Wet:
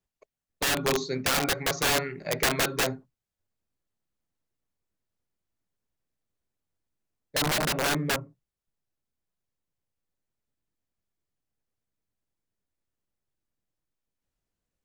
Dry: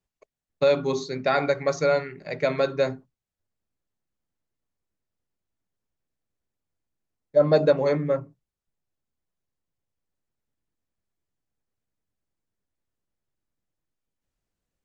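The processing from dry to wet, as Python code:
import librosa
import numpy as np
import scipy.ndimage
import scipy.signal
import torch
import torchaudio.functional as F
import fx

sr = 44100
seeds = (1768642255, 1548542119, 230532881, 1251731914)

y = (np.mod(10.0 ** (19.0 / 20.0) * x + 1.0, 2.0) - 1.0) / 10.0 ** (19.0 / 20.0)
y = fx.rider(y, sr, range_db=10, speed_s=0.5)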